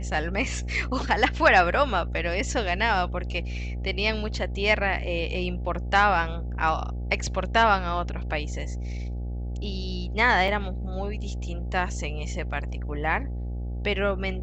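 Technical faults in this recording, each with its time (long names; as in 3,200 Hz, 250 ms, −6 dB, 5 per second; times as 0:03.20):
mains buzz 60 Hz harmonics 14 −31 dBFS
0:10.48: drop-out 2.3 ms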